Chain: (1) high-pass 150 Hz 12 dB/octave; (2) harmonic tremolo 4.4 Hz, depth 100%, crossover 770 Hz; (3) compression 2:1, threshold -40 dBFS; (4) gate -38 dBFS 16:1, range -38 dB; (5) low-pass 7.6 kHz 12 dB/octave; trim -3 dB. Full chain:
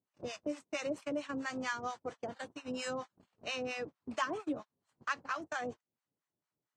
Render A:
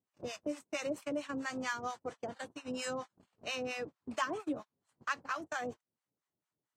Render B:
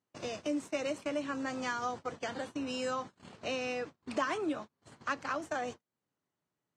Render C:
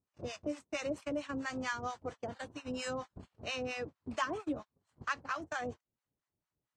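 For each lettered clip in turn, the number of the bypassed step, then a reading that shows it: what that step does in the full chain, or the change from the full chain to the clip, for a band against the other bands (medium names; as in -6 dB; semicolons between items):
5, 8 kHz band +2.0 dB; 2, crest factor change -2.5 dB; 1, 125 Hz band +6.0 dB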